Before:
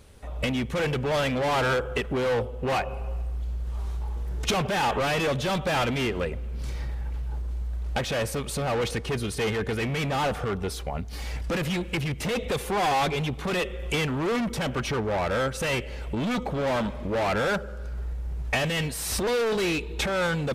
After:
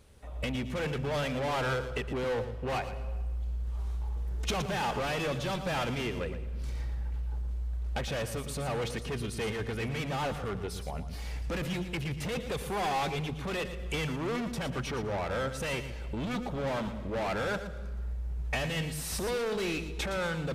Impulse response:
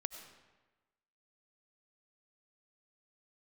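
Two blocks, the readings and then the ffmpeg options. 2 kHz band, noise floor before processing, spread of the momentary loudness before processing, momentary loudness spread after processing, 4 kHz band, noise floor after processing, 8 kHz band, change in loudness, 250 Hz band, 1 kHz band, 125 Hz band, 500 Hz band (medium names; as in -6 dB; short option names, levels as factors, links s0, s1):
-6.5 dB, -36 dBFS, 9 LU, 6 LU, -6.5 dB, -39 dBFS, -6.5 dB, -6.0 dB, -6.0 dB, -6.5 dB, -4.5 dB, -6.5 dB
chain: -filter_complex "[0:a]asplit=2[s0][s1];[s1]bass=f=250:g=10,treble=f=4000:g=4[s2];[1:a]atrim=start_sample=2205,adelay=115[s3];[s2][s3]afir=irnorm=-1:irlink=0,volume=0.299[s4];[s0][s4]amix=inputs=2:normalize=0,volume=0.447"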